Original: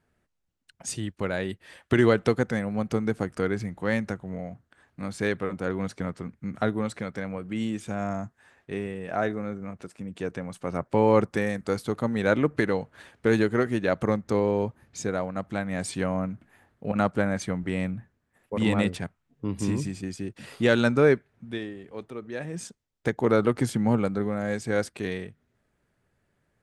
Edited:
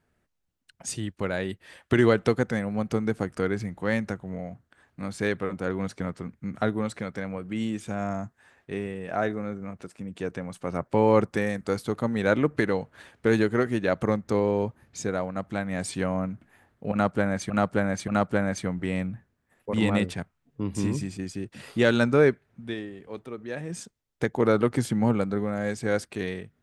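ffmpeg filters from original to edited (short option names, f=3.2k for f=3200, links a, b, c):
-filter_complex "[0:a]asplit=3[a][b][c];[a]atrim=end=17.502[d];[b]atrim=start=16.918:end=17.502[e];[c]atrim=start=16.918[f];[d][e]acrossfade=d=0.004:c1=hsin:c2=hsin[g];[g][f]acrossfade=d=0.004:c1=hsin:c2=hsin"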